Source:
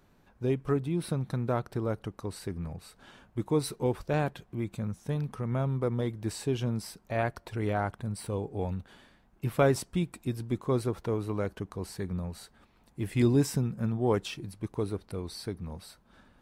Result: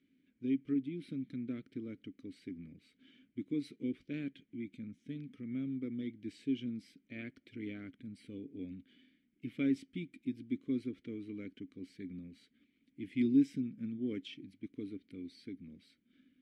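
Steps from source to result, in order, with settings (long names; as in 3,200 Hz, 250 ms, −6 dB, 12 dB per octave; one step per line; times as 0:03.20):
formant filter i
parametric band 860 Hz −10.5 dB 0.8 octaves
level +3 dB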